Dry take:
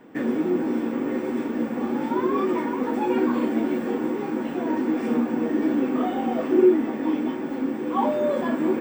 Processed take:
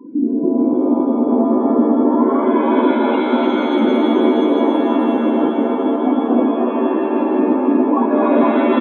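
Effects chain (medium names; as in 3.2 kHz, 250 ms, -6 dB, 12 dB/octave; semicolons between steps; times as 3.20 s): treble shelf 4.6 kHz +9 dB; tape echo 226 ms, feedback 78%, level -7 dB, low-pass 2.4 kHz; in parallel at +2 dB: peak limiter -17 dBFS, peak gain reduction 9.5 dB; on the sum: distance through air 51 m; small resonant body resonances 280/1000/2800 Hz, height 12 dB, ringing for 30 ms; compressor with a negative ratio -11 dBFS, ratio -0.5; spectral gate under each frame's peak -15 dB strong; on a send: delay 293 ms -4.5 dB; on the sum: pitch-shifted reverb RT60 3.8 s, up +7 st, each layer -2 dB, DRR 4.5 dB; trim -6 dB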